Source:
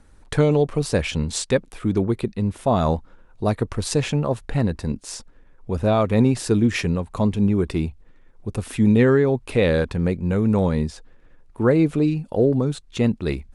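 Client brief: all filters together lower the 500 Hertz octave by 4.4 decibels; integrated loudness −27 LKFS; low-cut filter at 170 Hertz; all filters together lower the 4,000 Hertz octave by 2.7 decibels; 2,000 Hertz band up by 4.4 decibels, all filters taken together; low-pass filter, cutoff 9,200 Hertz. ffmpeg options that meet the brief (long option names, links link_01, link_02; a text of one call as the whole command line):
ffmpeg -i in.wav -af "highpass=170,lowpass=9200,equalizer=frequency=500:width_type=o:gain=-5.5,equalizer=frequency=2000:width_type=o:gain=7,equalizer=frequency=4000:width_type=o:gain=-5.5,volume=-2.5dB" out.wav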